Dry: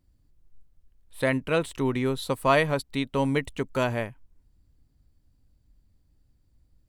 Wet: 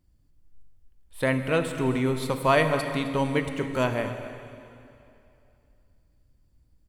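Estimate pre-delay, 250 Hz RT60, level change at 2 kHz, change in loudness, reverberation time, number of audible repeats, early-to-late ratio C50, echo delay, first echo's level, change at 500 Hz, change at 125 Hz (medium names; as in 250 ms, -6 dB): 6 ms, 2.7 s, +1.0 dB, +0.5 dB, 2.7 s, 1, 7.5 dB, 262 ms, -16.0 dB, +1.0 dB, +1.5 dB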